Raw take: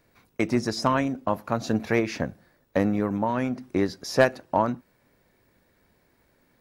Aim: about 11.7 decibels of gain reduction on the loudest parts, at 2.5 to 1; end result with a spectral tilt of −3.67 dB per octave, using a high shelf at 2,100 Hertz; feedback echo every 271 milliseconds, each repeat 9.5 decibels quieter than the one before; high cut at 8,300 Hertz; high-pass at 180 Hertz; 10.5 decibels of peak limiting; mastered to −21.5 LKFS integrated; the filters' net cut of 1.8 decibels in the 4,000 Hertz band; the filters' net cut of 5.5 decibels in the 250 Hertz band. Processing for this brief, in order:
high-pass filter 180 Hz
low-pass filter 8,300 Hz
parametric band 250 Hz −5.5 dB
high-shelf EQ 2,100 Hz +5 dB
parametric band 4,000 Hz −8 dB
downward compressor 2.5 to 1, threshold −31 dBFS
brickwall limiter −25.5 dBFS
repeating echo 271 ms, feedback 33%, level −9.5 dB
level +16.5 dB

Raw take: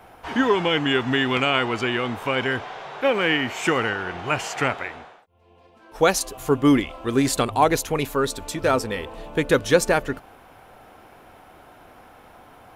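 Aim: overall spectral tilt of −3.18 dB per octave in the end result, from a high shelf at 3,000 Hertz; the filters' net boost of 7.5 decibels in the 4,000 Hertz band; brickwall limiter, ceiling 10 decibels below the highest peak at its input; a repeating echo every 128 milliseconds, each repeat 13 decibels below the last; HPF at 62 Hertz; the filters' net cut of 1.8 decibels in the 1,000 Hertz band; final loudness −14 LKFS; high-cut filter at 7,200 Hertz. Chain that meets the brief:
high-pass filter 62 Hz
low-pass filter 7,200 Hz
parametric band 1,000 Hz −3.5 dB
high-shelf EQ 3,000 Hz +4 dB
parametric band 4,000 Hz +8.5 dB
brickwall limiter −11.5 dBFS
repeating echo 128 ms, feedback 22%, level −13 dB
level +9 dB

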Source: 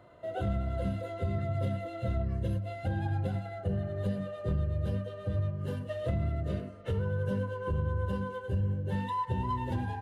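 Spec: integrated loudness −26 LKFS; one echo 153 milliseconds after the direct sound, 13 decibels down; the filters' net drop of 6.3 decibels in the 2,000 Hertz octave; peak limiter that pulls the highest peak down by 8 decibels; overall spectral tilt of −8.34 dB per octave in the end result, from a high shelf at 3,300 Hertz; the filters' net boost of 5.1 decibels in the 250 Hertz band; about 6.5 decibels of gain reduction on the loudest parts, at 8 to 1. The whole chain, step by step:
parametric band 250 Hz +7.5 dB
parametric band 2,000 Hz −6.5 dB
high-shelf EQ 3,300 Hz −8 dB
downward compressor 8 to 1, threshold −31 dBFS
brickwall limiter −30.5 dBFS
single-tap delay 153 ms −13 dB
level +12.5 dB

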